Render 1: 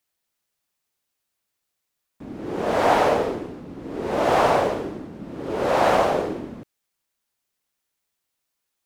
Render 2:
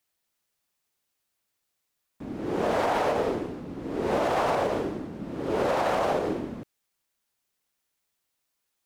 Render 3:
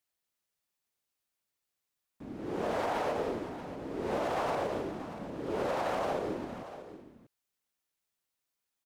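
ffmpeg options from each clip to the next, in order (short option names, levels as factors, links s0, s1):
-af "alimiter=limit=0.15:level=0:latency=1:release=90"
-af "aecho=1:1:634:0.224,volume=0.447"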